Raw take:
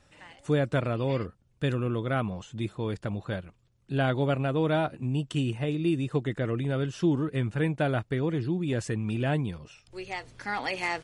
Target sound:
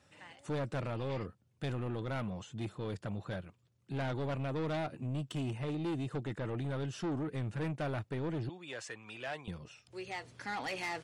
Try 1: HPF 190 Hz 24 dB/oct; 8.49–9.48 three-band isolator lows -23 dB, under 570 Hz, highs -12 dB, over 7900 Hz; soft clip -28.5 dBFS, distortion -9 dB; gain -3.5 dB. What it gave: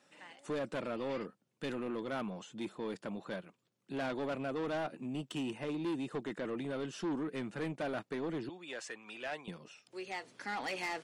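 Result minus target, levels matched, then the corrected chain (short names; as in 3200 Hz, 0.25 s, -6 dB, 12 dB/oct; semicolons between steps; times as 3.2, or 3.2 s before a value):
125 Hz band -10.0 dB
HPF 83 Hz 24 dB/oct; 8.49–9.48 three-band isolator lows -23 dB, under 570 Hz, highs -12 dB, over 7900 Hz; soft clip -28.5 dBFS, distortion -8 dB; gain -3.5 dB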